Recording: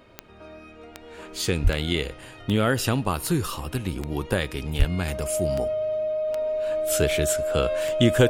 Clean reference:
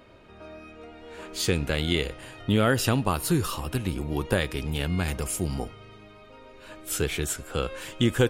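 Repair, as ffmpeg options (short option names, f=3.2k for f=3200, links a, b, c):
-filter_complex "[0:a]adeclick=t=4,bandreject=f=620:w=30,asplit=3[a][b][c];[a]afade=t=out:st=1.63:d=0.02[d];[b]highpass=f=140:w=0.5412,highpass=f=140:w=1.3066,afade=t=in:st=1.63:d=0.02,afade=t=out:st=1.75:d=0.02[e];[c]afade=t=in:st=1.75:d=0.02[f];[d][e][f]amix=inputs=3:normalize=0,asplit=3[g][h][i];[g]afade=t=out:st=4.78:d=0.02[j];[h]highpass=f=140:w=0.5412,highpass=f=140:w=1.3066,afade=t=in:st=4.78:d=0.02,afade=t=out:st=4.9:d=0.02[k];[i]afade=t=in:st=4.9:d=0.02[l];[j][k][l]amix=inputs=3:normalize=0,asetnsamples=n=441:p=0,asendcmd='6.28 volume volume -3.5dB',volume=0dB"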